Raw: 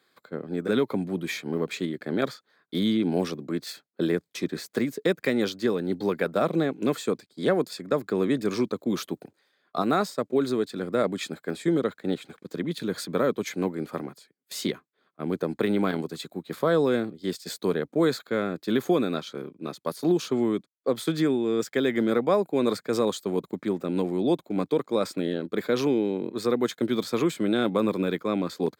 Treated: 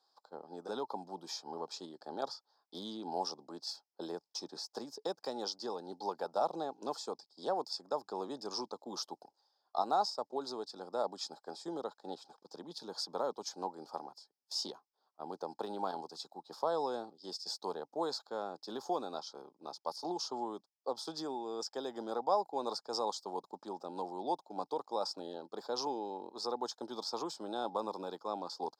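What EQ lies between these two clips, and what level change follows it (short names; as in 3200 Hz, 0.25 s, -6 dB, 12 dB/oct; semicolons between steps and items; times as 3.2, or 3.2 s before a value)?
double band-pass 2100 Hz, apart 2.6 oct; +5.5 dB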